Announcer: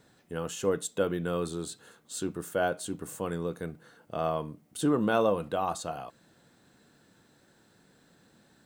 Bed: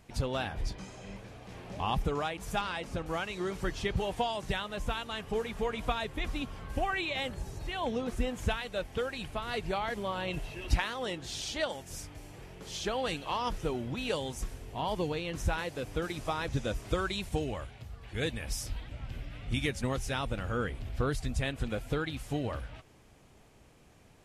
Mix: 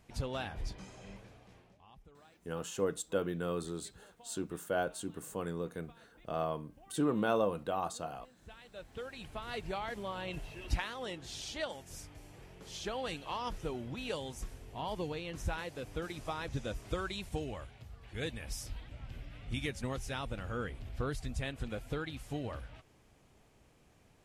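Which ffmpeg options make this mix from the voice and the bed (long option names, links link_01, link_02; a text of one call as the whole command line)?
ffmpeg -i stem1.wav -i stem2.wav -filter_complex "[0:a]adelay=2150,volume=-5dB[link_01];[1:a]volume=18dB,afade=type=out:start_time=1.08:duration=0.71:silence=0.0668344,afade=type=in:start_time=8.41:duration=1.09:silence=0.0707946[link_02];[link_01][link_02]amix=inputs=2:normalize=0" out.wav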